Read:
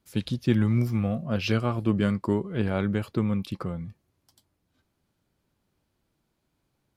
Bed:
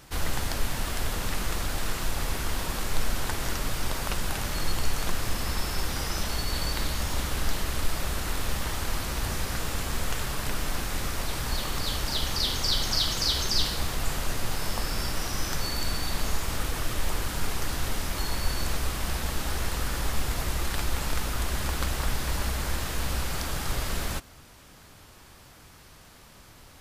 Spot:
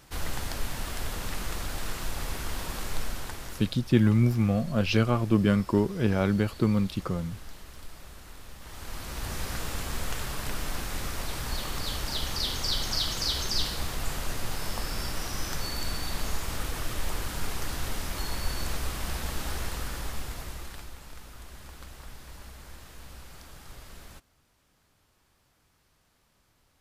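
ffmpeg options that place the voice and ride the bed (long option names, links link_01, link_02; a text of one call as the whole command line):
ffmpeg -i stem1.wav -i stem2.wav -filter_complex "[0:a]adelay=3450,volume=1.5dB[link_01];[1:a]volume=10dB,afade=type=out:start_time=2.88:duration=0.9:silence=0.223872,afade=type=in:start_time=8.59:duration=0.87:silence=0.199526,afade=type=out:start_time=19.49:duration=1.48:silence=0.199526[link_02];[link_01][link_02]amix=inputs=2:normalize=0" out.wav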